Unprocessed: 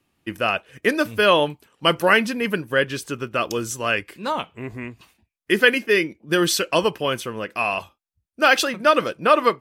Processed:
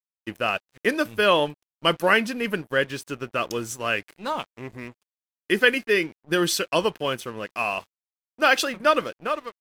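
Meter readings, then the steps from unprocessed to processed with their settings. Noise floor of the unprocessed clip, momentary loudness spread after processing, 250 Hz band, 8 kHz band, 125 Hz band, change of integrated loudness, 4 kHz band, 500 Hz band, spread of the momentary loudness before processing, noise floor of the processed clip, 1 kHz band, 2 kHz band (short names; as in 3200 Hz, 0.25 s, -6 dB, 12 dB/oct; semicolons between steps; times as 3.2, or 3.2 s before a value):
-81 dBFS, 12 LU, -3.5 dB, -3.5 dB, -4.0 dB, -3.5 dB, -3.0 dB, -3.5 dB, 11 LU, under -85 dBFS, -4.0 dB, -3.0 dB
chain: ending faded out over 0.70 s; crossover distortion -41.5 dBFS; gain -2.5 dB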